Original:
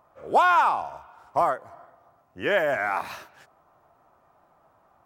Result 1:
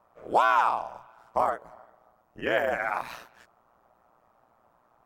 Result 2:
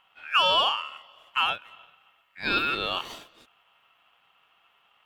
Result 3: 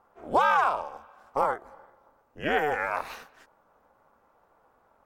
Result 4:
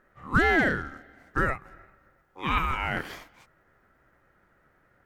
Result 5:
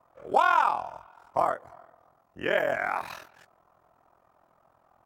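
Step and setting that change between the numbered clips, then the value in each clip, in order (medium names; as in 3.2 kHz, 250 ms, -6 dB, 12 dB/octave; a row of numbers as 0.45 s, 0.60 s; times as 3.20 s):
ring modulator, frequency: 59 Hz, 2 kHz, 150 Hz, 650 Hz, 21 Hz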